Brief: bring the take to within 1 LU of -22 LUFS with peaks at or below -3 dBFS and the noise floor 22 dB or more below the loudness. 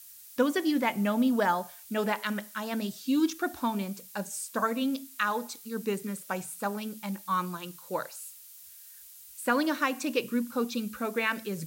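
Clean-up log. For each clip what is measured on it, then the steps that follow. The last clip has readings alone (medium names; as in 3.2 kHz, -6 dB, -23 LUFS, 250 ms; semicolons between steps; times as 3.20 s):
noise floor -50 dBFS; noise floor target -53 dBFS; loudness -30.5 LUFS; peak level -14.0 dBFS; loudness target -22.0 LUFS
-> noise print and reduce 6 dB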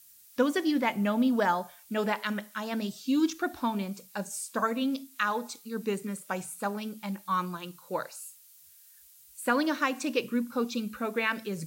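noise floor -56 dBFS; loudness -30.5 LUFS; peak level -14.0 dBFS; loudness target -22.0 LUFS
-> trim +8.5 dB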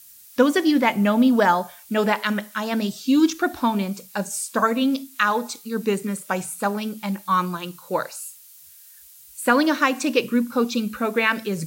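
loudness -22.0 LUFS; peak level -5.5 dBFS; noise floor -48 dBFS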